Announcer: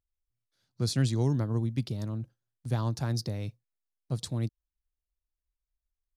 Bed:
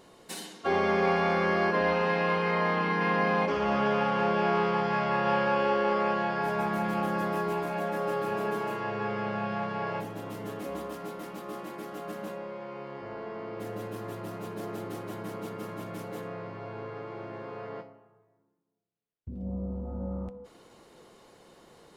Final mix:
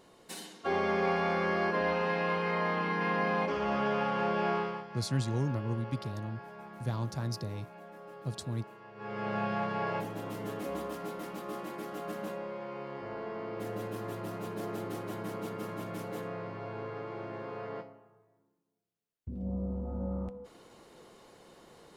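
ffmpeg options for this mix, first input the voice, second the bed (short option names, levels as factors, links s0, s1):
-filter_complex "[0:a]adelay=4150,volume=0.596[s0];[1:a]volume=5.01,afade=t=out:st=4.51:d=0.35:silence=0.188365,afade=t=in:st=8.95:d=0.42:silence=0.125893[s1];[s0][s1]amix=inputs=2:normalize=0"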